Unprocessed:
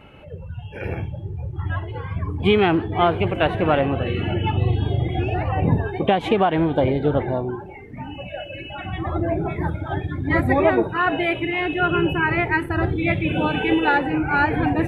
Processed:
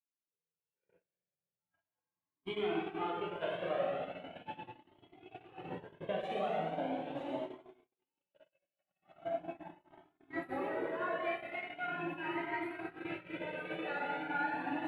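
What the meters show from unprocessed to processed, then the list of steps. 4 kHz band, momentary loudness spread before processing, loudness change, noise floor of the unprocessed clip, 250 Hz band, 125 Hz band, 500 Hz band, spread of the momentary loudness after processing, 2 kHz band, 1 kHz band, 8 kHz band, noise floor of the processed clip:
-19.0 dB, 14 LU, -17.5 dB, -37 dBFS, -21.0 dB, -31.5 dB, -17.0 dB, 13 LU, -18.0 dB, -17.0 dB, no reading, under -85 dBFS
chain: on a send: feedback echo behind a high-pass 946 ms, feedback 58%, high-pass 2.5 kHz, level -5.5 dB; on the sum: added noise brown -44 dBFS; high-pass 180 Hz 24 dB/octave; plate-style reverb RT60 2.3 s, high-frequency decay 0.95×, DRR -5.5 dB; dynamic bell 640 Hz, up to +4 dB, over -32 dBFS, Q 2.9; compression 2:1, threshold -29 dBFS, peak gain reduction 13.5 dB; gate -23 dBFS, range -54 dB; Shepard-style flanger rising 0.4 Hz; trim -8.5 dB

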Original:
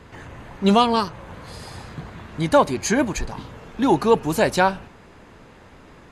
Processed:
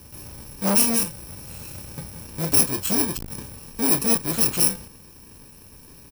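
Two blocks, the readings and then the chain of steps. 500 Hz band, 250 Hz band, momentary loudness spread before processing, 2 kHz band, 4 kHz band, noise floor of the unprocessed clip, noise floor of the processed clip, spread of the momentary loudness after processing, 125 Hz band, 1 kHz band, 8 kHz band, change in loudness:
-11.0 dB, -5.0 dB, 20 LU, -7.5 dB, 0.0 dB, -48 dBFS, -47 dBFS, 19 LU, -3.5 dB, -13.0 dB, +11.0 dB, +0.5 dB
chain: bit-reversed sample order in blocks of 64 samples; doubling 30 ms -11 dB; transformer saturation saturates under 1.5 kHz

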